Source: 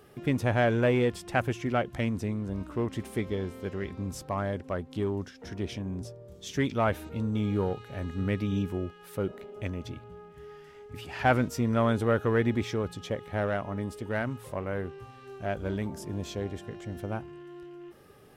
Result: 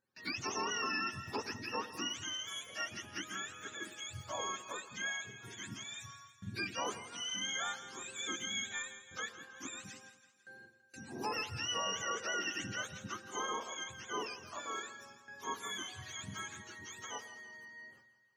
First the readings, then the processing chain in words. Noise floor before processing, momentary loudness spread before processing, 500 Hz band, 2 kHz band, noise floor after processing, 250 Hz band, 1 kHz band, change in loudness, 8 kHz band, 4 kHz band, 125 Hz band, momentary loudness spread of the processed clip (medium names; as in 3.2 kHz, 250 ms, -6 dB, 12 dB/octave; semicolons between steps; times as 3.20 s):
-52 dBFS, 19 LU, -16.5 dB, -3.5 dB, -66 dBFS, -18.0 dB, -6.5 dB, -9.0 dB, +7.5 dB, +5.5 dB, -21.5 dB, 14 LU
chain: spectrum inverted on a logarithmic axis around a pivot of 810 Hz; gate with hold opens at -39 dBFS; bass shelf 120 Hz -11.5 dB; peak limiter -21.5 dBFS, peak gain reduction 10.5 dB; two-band feedback delay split 850 Hz, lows 101 ms, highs 166 ms, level -13 dB; trim -6 dB